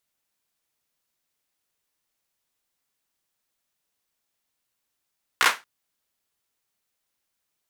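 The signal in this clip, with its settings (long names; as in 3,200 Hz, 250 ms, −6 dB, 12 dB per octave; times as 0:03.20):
synth clap length 0.23 s, apart 16 ms, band 1,400 Hz, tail 0.23 s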